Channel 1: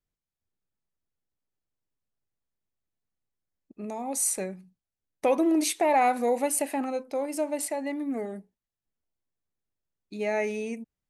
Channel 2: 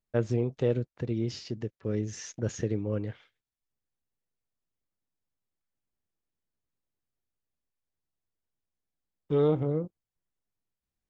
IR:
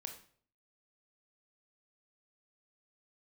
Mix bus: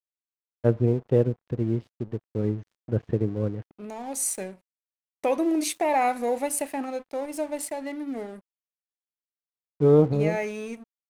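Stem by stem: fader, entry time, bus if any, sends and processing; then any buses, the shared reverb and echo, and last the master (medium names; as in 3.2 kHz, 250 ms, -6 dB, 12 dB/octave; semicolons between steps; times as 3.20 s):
-1.5 dB, 0.00 s, send -11.5 dB, none
+0.5 dB, 0.50 s, send -13.5 dB, low-pass 3.6 kHz 24 dB/octave; tilt shelf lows +7 dB, about 1.5 kHz; upward expansion 1.5:1, over -27 dBFS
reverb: on, RT60 0.50 s, pre-delay 21 ms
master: crossover distortion -46.5 dBFS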